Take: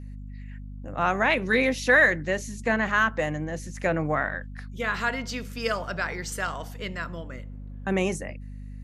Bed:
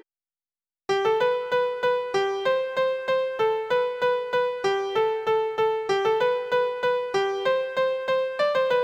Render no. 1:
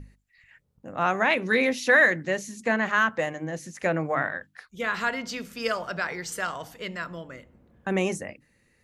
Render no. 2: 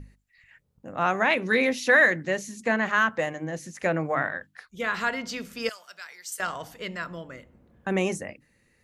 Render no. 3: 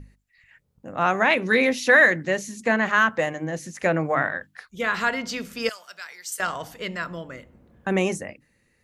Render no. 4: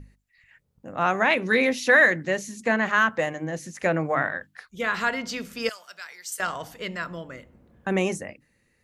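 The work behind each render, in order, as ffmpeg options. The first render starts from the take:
-af "bandreject=f=50:t=h:w=6,bandreject=f=100:t=h:w=6,bandreject=f=150:t=h:w=6,bandreject=f=200:t=h:w=6,bandreject=f=250:t=h:w=6,bandreject=f=300:t=h:w=6"
-filter_complex "[0:a]asettb=1/sr,asplit=3[a][b][c];[a]atrim=end=5.694[d];[b]atrim=start=5.69:end=6.4,asetpts=PTS-STARTPTS,afade=t=in:d=0.004:c=qsin,afade=t=out:st=0.706:d=0.004:c=qsin,aderivative[e];[c]atrim=start=6.396[f];[d][e]acrossfade=d=0.004:c1=hsin:c2=qsin[g];[g][f]acrossfade=d=0.004:c1=qsin:c2=hsin"
-af "dynaudnorm=f=170:g=9:m=3.5dB"
-af "volume=-1.5dB"

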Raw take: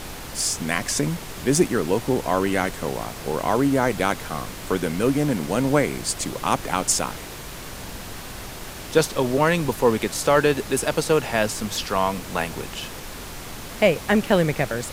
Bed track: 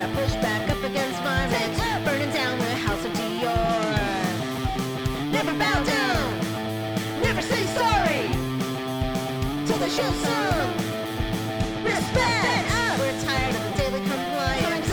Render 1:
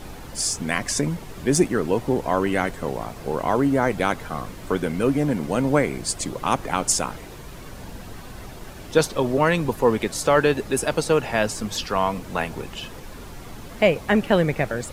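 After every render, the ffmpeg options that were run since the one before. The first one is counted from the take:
-af "afftdn=nr=9:nf=-36"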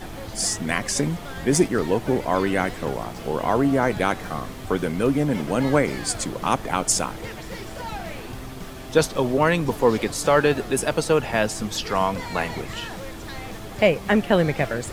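-filter_complex "[1:a]volume=-13dB[a];[0:a][a]amix=inputs=2:normalize=0"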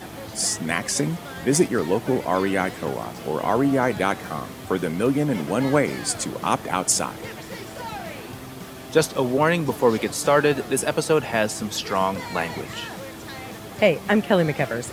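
-af "highpass=100,equalizer=f=12k:w=1.3:g=3"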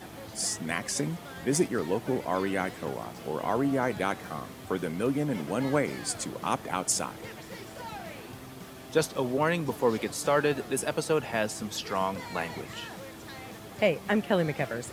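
-af "volume=-7dB"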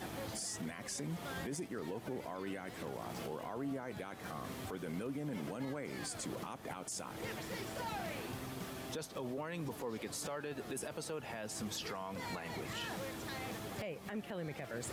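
-af "acompressor=threshold=-34dB:ratio=12,alimiter=level_in=8.5dB:limit=-24dB:level=0:latency=1:release=15,volume=-8.5dB"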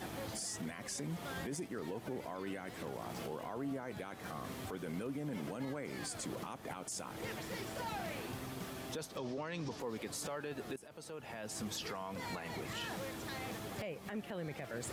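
-filter_complex "[0:a]asettb=1/sr,asplit=3[a][b][c];[a]atrim=end=9.174[d];[b]atrim=start=9.17:end=9.8,asetpts=PTS-STARTPTS,afade=t=in:d=0.004:c=qsin,afade=t=out:st=0.626:d=0.004:c=qsin,lowpass=f=5.4k:t=q:w=2.8[e];[c]atrim=start=9.796[f];[d][e]acrossfade=d=0.004:c1=hsin:c2=qsin[g];[g][f]acrossfade=d=0.004:c1=qsin:c2=hsin,asplit=2[h][i];[h]atrim=end=10.76,asetpts=PTS-STARTPTS,afade=t=out:st=10.756:d=0.004:c=hsin:silence=0.141254[j];[i]atrim=start=10.76,asetpts=PTS-STARTPTS,afade=t=in:d=0.78:silence=0.141254[k];[j][k]concat=n=2:v=0:a=1"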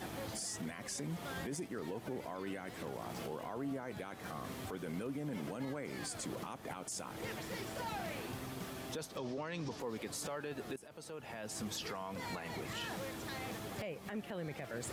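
-af anull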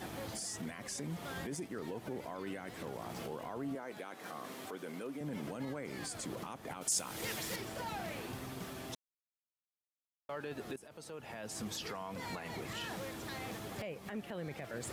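-filter_complex "[0:a]asettb=1/sr,asplit=3[a][b][c];[a]atrim=end=3.754[d];[b]atrim=start=3.75:end=5.21,asetpts=PTS-STARTPTS,afade=t=in:d=0.004:c=qsin,afade=t=out:st=1.456:d=0.004:c=qsin,highpass=260[e];[c]atrim=start=5.206[f];[d][e]acrossfade=d=0.004:c1=hsin:c2=qsin[g];[g][f]acrossfade=d=0.004:c1=qsin:c2=hsin,asettb=1/sr,asplit=3[h][i][j];[h]atrim=end=6.814[k];[i]atrim=start=6.81:end=7.56,asetpts=PTS-STARTPTS,afade=t=in:d=0.004:c=qsin,afade=t=out:st=0.746:d=0.004:c=qsin,highshelf=f=2.7k:g=11.5[l];[j]atrim=start=7.556[m];[k][l]acrossfade=d=0.004:c1=hsin:c2=qsin[n];[n][m]acrossfade=d=0.004:c1=qsin:c2=hsin,asplit=3[o][p][q];[o]atrim=end=8.95,asetpts=PTS-STARTPTS,afade=t=out:st=8.946:d=0.004:c=hsin[r];[p]atrim=start=8.95:end=10.29,asetpts=PTS-STARTPTS,volume=0[s];[q]atrim=start=10.29,asetpts=PTS-STARTPTS,afade=t=in:d=0.004:c=hsin[t];[r][s][t]concat=n=3:v=0:a=1"

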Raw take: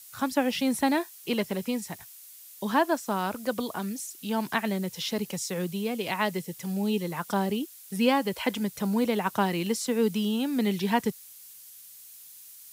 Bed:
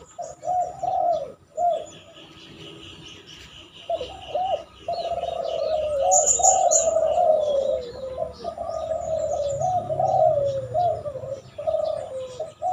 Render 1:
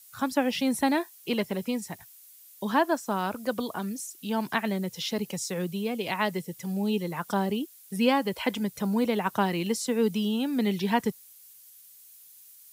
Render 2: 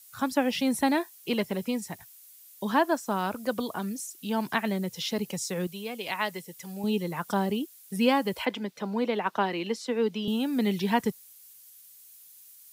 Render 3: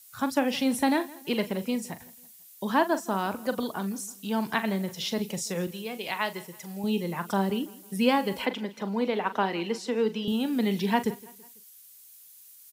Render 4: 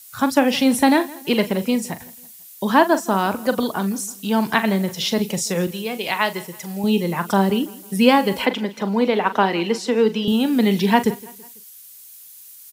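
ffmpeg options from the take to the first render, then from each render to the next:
-af "afftdn=nr=6:nf=-49"
-filter_complex "[0:a]asettb=1/sr,asplit=3[a][b][c];[a]atrim=end=5.674[d];[b]atrim=start=5.67:end=6.84,asetpts=PTS-STARTPTS,afade=t=in:d=0.004:c=qsin,afade=t=out:st=1.166:d=0.004:c=qsin,lowshelf=f=460:g=-10.5[e];[c]atrim=start=6.836[f];[d][e]acrossfade=d=0.004:c1=hsin:c2=qsin[g];[g][f]acrossfade=d=0.004:c1=qsin:c2=hsin,asettb=1/sr,asplit=3[h][i][j];[h]atrim=end=8.454[k];[i]atrim=start=8.45:end=10.28,asetpts=PTS-STARTPTS,afade=t=in:d=0.004:c=qsin,afade=t=out:st=1.826:d=0.004:c=qsin,acrossover=split=210 5100:gain=0.0631 1 0.141[l][m][n];[l][m][n]amix=inputs=3:normalize=0[o];[j]atrim=start=10.276[p];[k][o]acrossfade=d=0.004:c1=hsin:c2=qsin[q];[q][p]acrossfade=d=0.004:c1=qsin:c2=hsin"
-filter_complex "[0:a]asplit=2[a][b];[b]adelay=41,volume=-12dB[c];[a][c]amix=inputs=2:normalize=0,aecho=1:1:165|330|495:0.0891|0.0401|0.018"
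-af "volume=9dB"

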